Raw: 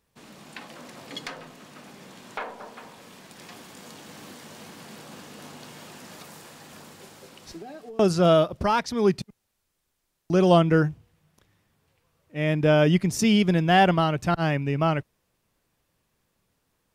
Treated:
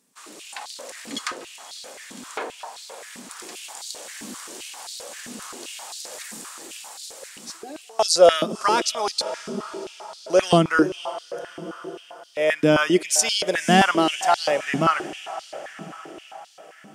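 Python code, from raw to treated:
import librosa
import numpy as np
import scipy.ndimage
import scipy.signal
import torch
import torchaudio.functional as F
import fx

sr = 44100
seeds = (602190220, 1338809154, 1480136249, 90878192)

y = fx.peak_eq(x, sr, hz=8100.0, db=14.5, octaves=1.4)
y = fx.echo_diffused(y, sr, ms=544, feedback_pct=57, wet_db=-14)
y = fx.filter_held_highpass(y, sr, hz=7.6, low_hz=230.0, high_hz=4100.0)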